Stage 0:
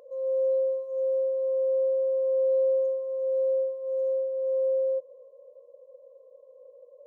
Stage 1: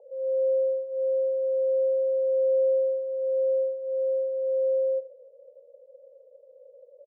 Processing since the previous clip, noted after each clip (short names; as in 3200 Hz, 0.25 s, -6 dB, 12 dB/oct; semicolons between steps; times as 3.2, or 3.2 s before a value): elliptic band-pass 400–830 Hz, stop band 40 dB; echo 87 ms -15 dB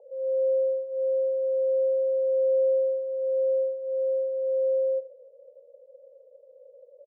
nothing audible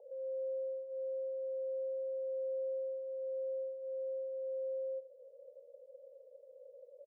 compressor 2:1, threshold -42 dBFS, peak gain reduction 11.5 dB; gain -4 dB